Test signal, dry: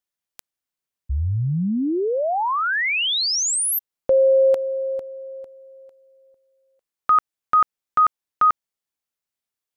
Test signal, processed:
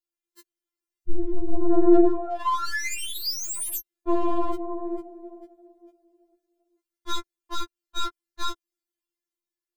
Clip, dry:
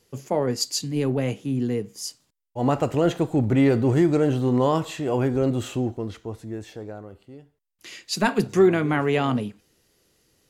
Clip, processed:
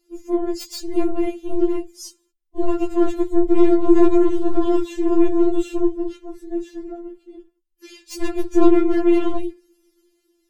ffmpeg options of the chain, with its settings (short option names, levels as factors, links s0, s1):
-filter_complex "[0:a]afftfilt=real='hypot(re,im)*cos(2*PI*random(0))':imag='hypot(re,im)*sin(2*PI*random(1))':win_size=512:overlap=0.75,asplit=2[s0][s1];[s1]alimiter=limit=0.106:level=0:latency=1:release=20,volume=1.19[s2];[s0][s2]amix=inputs=2:normalize=0,dynaudnorm=f=110:g=11:m=1.5,lowshelf=f=450:t=q:w=1.5:g=10,aeval=exprs='(tanh(1.78*val(0)+0.55)-tanh(0.55))/1.78':c=same,acrossover=split=780[s3][s4];[s4]aeval=exprs='0.0891*(abs(mod(val(0)/0.0891+3,4)-2)-1)':c=same[s5];[s3][s5]amix=inputs=2:normalize=0,afftfilt=real='re*4*eq(mod(b,16),0)':imag='im*4*eq(mod(b,16),0)':win_size=2048:overlap=0.75,volume=0.708"